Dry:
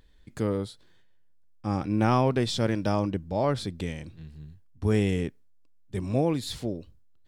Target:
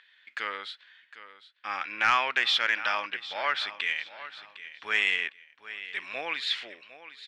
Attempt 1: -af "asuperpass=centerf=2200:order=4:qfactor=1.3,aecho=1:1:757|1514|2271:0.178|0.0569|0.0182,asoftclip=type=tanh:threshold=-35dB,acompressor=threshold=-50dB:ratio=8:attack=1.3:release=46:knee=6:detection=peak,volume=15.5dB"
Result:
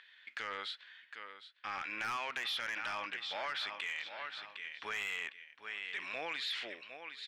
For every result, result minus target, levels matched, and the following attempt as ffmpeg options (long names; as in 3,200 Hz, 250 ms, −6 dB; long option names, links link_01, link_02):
downward compressor: peak gain reduction +12 dB; soft clipping: distortion +11 dB
-af "asuperpass=centerf=2200:order=4:qfactor=1.3,aecho=1:1:757|1514|2271:0.178|0.0569|0.0182,asoftclip=type=tanh:threshold=-35dB,volume=15.5dB"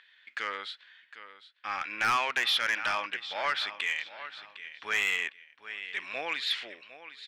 soft clipping: distortion +11 dB
-af "asuperpass=centerf=2200:order=4:qfactor=1.3,aecho=1:1:757|1514|2271:0.178|0.0569|0.0182,asoftclip=type=tanh:threshold=-25dB,volume=15.5dB"